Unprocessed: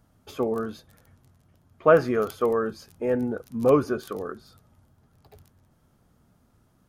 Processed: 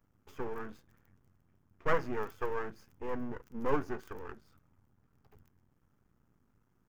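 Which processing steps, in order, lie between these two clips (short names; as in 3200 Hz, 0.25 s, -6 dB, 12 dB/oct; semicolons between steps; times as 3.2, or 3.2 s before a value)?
half-wave rectifier; fifteen-band EQ 630 Hz -7 dB, 4000 Hz -11 dB, 10000 Hz -12 dB; gain -5 dB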